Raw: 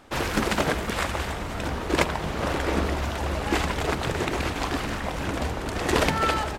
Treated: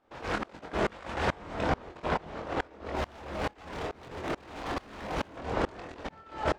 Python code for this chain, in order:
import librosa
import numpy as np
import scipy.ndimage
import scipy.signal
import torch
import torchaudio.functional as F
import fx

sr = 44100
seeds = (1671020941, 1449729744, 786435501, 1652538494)

y = scipy.signal.sosfilt(scipy.signal.butter(2, 5900.0, 'lowpass', fs=sr, output='sos'), x)
y = fx.peak_eq(y, sr, hz=630.0, db=8.0, octaves=2.9)
y = fx.over_compress(y, sr, threshold_db=-24.0, ratio=-0.5)
y = fx.clip_hard(y, sr, threshold_db=-24.0, at=(2.95, 5.36))
y = fx.doubler(y, sr, ms=24.0, db=-6.0)
y = fx.tremolo_decay(y, sr, direction='swelling', hz=2.3, depth_db=28)
y = y * 10.0 ** (-2.0 / 20.0)